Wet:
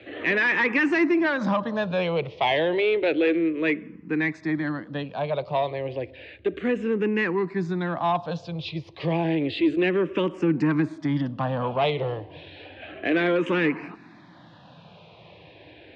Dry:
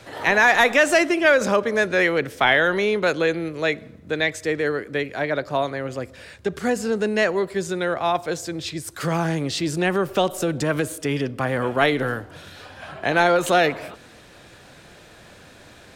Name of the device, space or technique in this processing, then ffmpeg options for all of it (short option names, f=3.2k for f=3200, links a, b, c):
barber-pole phaser into a guitar amplifier: -filter_complex "[0:a]asplit=2[a][b];[b]afreqshift=-0.31[c];[a][c]amix=inputs=2:normalize=1,asoftclip=type=tanh:threshold=-16dB,highpass=85,equalizer=f=170:t=q:w=4:g=6,equalizer=f=310:t=q:w=4:g=8,equalizer=f=980:t=q:w=4:g=4,equalizer=f=1.4k:t=q:w=4:g=-7,equalizer=f=2.6k:t=q:w=4:g=4,lowpass=f=3.7k:w=0.5412,lowpass=f=3.7k:w=1.3066"